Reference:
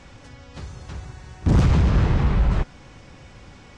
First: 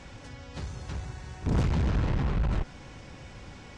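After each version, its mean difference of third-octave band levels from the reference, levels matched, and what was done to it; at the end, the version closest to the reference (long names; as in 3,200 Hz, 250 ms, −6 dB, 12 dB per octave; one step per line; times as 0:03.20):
5.0 dB: one-sided soft clipper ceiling −25 dBFS
notch filter 1,200 Hz, Q 18
brickwall limiter −19.5 dBFS, peak gain reduction 7 dB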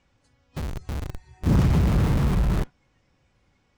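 9.0 dB: noise reduction from a noise print of the clip's start 14 dB
dynamic equaliser 190 Hz, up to +5 dB, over −29 dBFS, Q 0.9
in parallel at −3 dB: comparator with hysteresis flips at −33 dBFS
on the sum: level −7 dB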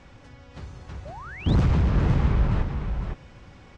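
3.0 dB: high-shelf EQ 5,300 Hz −10 dB
single-tap delay 508 ms −6 dB
sound drawn into the spectrogram rise, 0:01.05–0:01.55, 540–4,300 Hz −37 dBFS
level −3.5 dB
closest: third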